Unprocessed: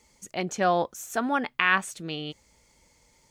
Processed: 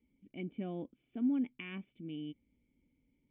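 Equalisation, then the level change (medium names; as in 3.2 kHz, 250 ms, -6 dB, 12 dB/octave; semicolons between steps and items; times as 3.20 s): cascade formant filter i; distance through air 400 m; +1.0 dB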